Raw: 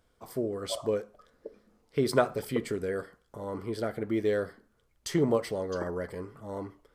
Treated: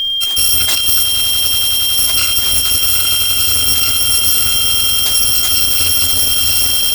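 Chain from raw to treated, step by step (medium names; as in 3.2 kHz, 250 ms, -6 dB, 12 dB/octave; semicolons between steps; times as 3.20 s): bit-reversed sample order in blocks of 256 samples; reverse; compression 6:1, threshold -39 dBFS, peak gain reduction 19.5 dB; reverse; short-mantissa float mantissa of 2-bit; echo with a slow build-up 93 ms, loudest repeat 8, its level -14 dB; whistle 3.2 kHz -45 dBFS; loudness maximiser +33 dB; trim -2 dB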